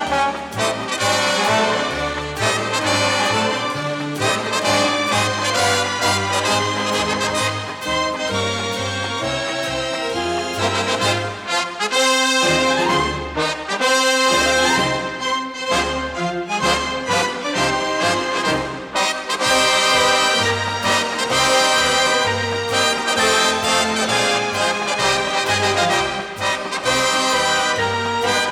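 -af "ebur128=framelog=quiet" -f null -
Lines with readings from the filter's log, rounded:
Integrated loudness:
  I:         -17.7 LUFS
  Threshold: -27.7 LUFS
Loudness range:
  LRA:         4.3 LU
  Threshold: -37.7 LUFS
  LRA low:   -20.1 LUFS
  LRA high:  -15.8 LUFS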